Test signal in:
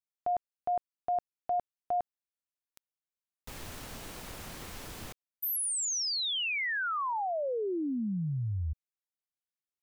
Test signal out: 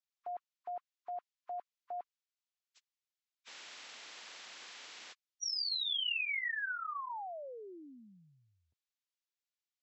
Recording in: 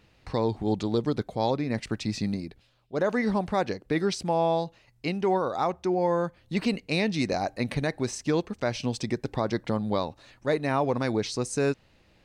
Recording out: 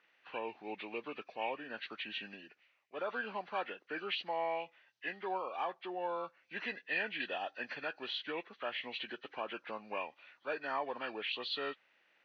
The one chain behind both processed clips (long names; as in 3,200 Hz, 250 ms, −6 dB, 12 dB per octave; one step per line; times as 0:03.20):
hearing-aid frequency compression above 1,000 Hz 1.5 to 1
band-pass filter 230–3,000 Hz
first difference
level +9 dB